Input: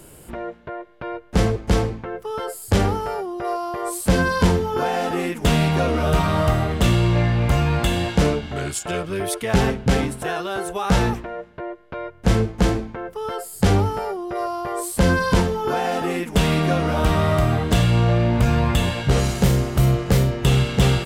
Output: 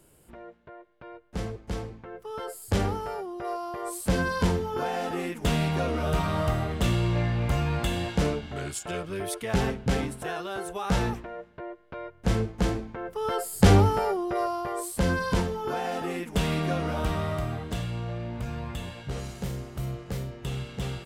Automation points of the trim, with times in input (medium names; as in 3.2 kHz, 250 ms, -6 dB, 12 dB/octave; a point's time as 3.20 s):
1.85 s -14.5 dB
2.42 s -7.5 dB
12.82 s -7.5 dB
13.34 s 0 dB
14.19 s 0 dB
15.00 s -8 dB
16.88 s -8 dB
18.01 s -16 dB